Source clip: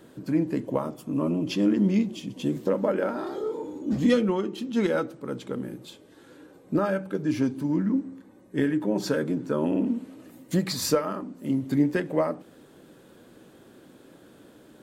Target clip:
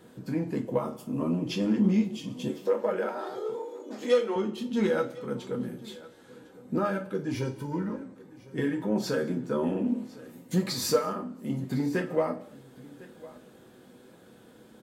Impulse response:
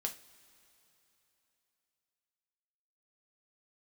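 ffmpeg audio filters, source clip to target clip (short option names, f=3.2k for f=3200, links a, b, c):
-filter_complex "[0:a]asettb=1/sr,asplit=3[a][b][c];[a]atrim=end=2.484[d];[b]atrim=start=2.48:end=4.36,asetpts=PTS-STARTPTS,afade=t=in:d=0.004:c=qsin,afade=t=out:st=1.876:d=0.004:c=qsin,highpass=f=370:w=0.5412,highpass=f=370:w=1.3066[e];[c]atrim=start=4.356[f];[d][e]acrossfade=d=0.004:c1=hsin:c2=qsin[g];[g][f]acrossfade=d=0.004:c1=qsin:c2=hsin,asettb=1/sr,asplit=3[h][i][j];[h]atrim=end=7.344[k];[i]atrim=start=7.34:end=8.04,asetpts=PTS-STARTPTS,afade=t=in:d=0.004:c=qsin,afade=t=out:st=0.696:d=0.004:c=qsin,aecho=1:1:2.1:0.76,atrim=end_sample=30870[l];[j]atrim=start=8.036[m];[k][l]acrossfade=d=0.004:c1=hsin:c2=qsin[n];[n][m]acrossfade=d=0.004:c1=qsin:c2=hsin,asplit=2[o][p];[p]asoftclip=type=tanh:threshold=-19.5dB,volume=-6.5dB[q];[o][q]amix=inputs=2:normalize=0,aecho=1:1:1055:0.0944[r];[1:a]atrim=start_sample=2205,afade=t=out:st=0.31:d=0.01,atrim=end_sample=14112,asetrate=48510,aresample=44100[s];[r][s]afir=irnorm=-1:irlink=0,volume=-4dB"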